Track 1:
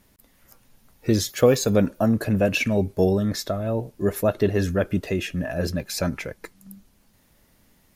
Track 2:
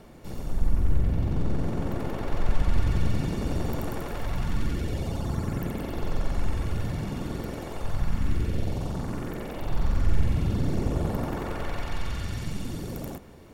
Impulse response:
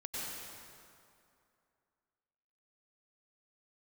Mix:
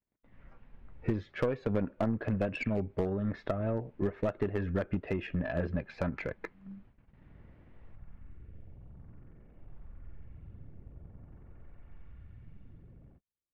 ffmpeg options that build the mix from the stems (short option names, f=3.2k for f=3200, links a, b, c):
-filter_complex "[0:a]equalizer=f=12k:t=o:w=0.29:g=6.5,acompressor=threshold=-29dB:ratio=5,volume=1dB,asplit=2[a][b];[1:a]equalizer=f=940:t=o:w=0.77:g=-3.5,acrossover=split=150|360[c][d][e];[c]acompressor=threshold=-30dB:ratio=4[f];[d]acompressor=threshold=-54dB:ratio=4[g];[e]acompressor=threshold=-55dB:ratio=4[h];[f][g][h]amix=inputs=3:normalize=0,volume=-12.5dB[i];[b]apad=whole_len=596761[j];[i][j]sidechaincompress=threshold=-52dB:ratio=10:attack=16:release=594[k];[a][k]amix=inputs=2:normalize=0,lowpass=f=2.4k:w=0.5412,lowpass=f=2.4k:w=1.3066,agate=range=-39dB:threshold=-54dB:ratio=16:detection=peak,aeval=exprs='0.0794*(cos(1*acos(clip(val(0)/0.0794,-1,1)))-cos(1*PI/2))+0.01*(cos(2*acos(clip(val(0)/0.0794,-1,1)))-cos(2*PI/2))+0.00794*(cos(3*acos(clip(val(0)/0.0794,-1,1)))-cos(3*PI/2))':c=same"